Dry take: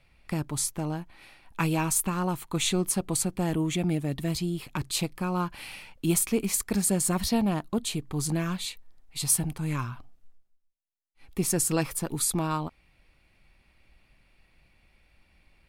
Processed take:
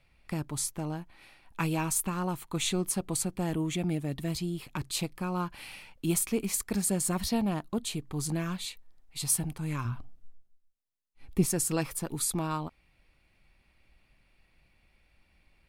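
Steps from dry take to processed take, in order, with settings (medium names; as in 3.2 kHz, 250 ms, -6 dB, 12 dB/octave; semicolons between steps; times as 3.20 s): 9.85–11.46 s: bass shelf 410 Hz +8.5 dB; trim -3.5 dB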